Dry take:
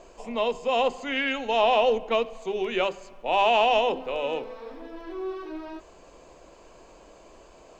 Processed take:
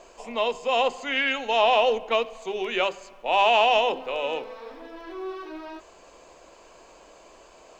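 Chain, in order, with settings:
low-shelf EQ 400 Hz −10 dB
level +3.5 dB

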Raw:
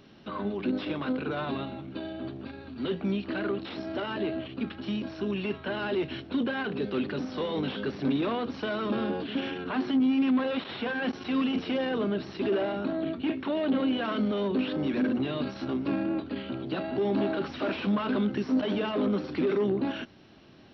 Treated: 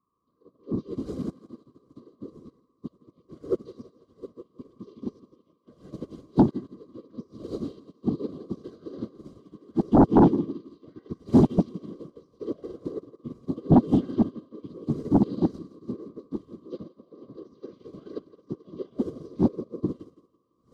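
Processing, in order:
vocoder with an arpeggio as carrier bare fifth, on C4, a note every 118 ms
wind on the microphone 560 Hz −44 dBFS
flat-topped bell 1,300 Hz −14 dB 2.7 octaves
hum removal 235.2 Hz, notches 11
shaped tremolo saw up 0.77 Hz, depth 75%
steady tone 1,100 Hz −55 dBFS
random phases in short frames
bass and treble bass +5 dB, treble +12 dB
notch comb filter 880 Hz
feedback echo with a high-pass in the loop 166 ms, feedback 67%, high-pass 180 Hz, level −8 dB
sine wavefolder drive 8 dB, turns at −9.5 dBFS
expander for the loud parts 2.5 to 1, over −35 dBFS

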